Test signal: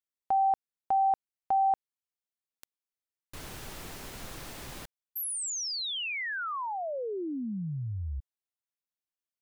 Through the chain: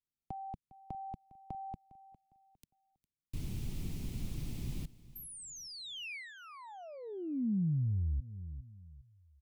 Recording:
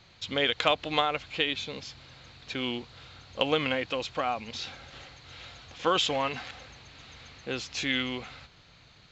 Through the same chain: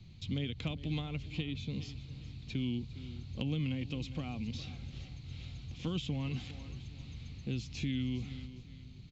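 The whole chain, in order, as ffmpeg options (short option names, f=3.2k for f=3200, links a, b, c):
-filter_complex "[0:a]firequalizer=gain_entry='entry(160,0);entry(520,-23);entry(1600,-30);entry(2300,-18)':delay=0.05:min_phase=1,asplit=2[a][b];[b]aecho=0:1:406|812|1218:0.112|0.0348|0.0108[c];[a][c]amix=inputs=2:normalize=0,acrossover=split=240|2800[d][e][f];[d]acompressor=threshold=-43dB:ratio=4[g];[e]acompressor=threshold=-53dB:ratio=4[h];[f]acompressor=threshold=-58dB:ratio=4[i];[g][h][i]amix=inputs=3:normalize=0,volume=10dB"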